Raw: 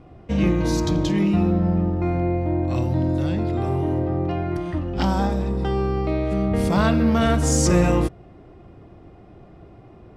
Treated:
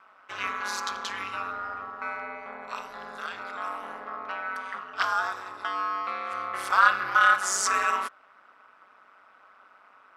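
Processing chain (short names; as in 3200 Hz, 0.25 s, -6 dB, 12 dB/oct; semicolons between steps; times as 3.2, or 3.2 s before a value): resonant high-pass 1300 Hz, resonance Q 5.9; ring modulator 96 Hz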